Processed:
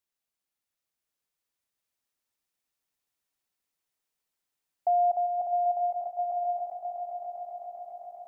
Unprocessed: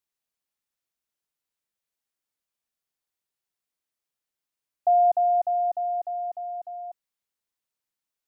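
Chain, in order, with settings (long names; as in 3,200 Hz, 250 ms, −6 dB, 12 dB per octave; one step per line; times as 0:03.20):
in parallel at −0.5 dB: downward compressor, threshold −30 dBFS, peak gain reduction 12 dB
on the sum: echo that builds up and dies away 132 ms, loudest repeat 8, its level −10 dB
level −7 dB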